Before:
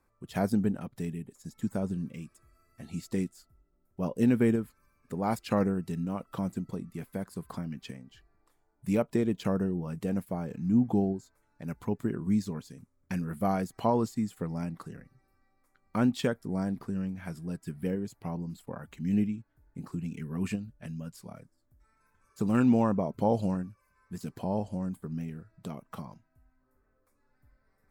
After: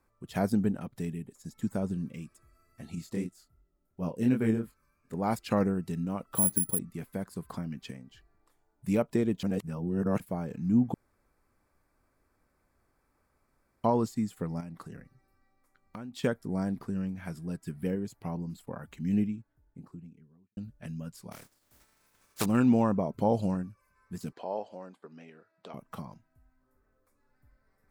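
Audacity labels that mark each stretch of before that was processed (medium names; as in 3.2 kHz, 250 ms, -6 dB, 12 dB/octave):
2.950000	5.140000	chorus 2.8 Hz
6.350000	6.790000	careless resampling rate divided by 4×, down filtered, up zero stuff
9.430000	10.200000	reverse
10.940000	13.840000	room tone
14.600000	16.240000	compression 10:1, threshold -38 dBFS
18.950000	20.570000	studio fade out
21.310000	22.440000	spectral contrast reduction exponent 0.38
24.330000	25.740000	Chebyshev band-pass 490–4100 Hz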